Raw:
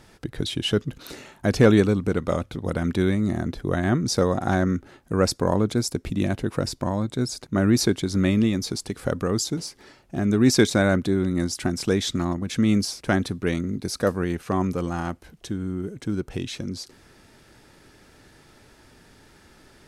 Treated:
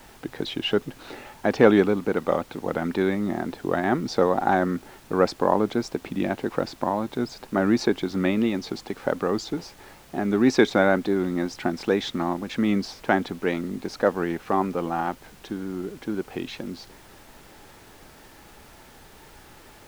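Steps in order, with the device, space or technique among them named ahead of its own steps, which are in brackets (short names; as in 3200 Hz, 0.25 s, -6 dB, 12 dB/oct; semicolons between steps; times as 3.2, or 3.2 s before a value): horn gramophone (BPF 250–3100 Hz; bell 830 Hz +7.5 dB 0.36 oct; wow and flutter; pink noise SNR 25 dB); gain +1.5 dB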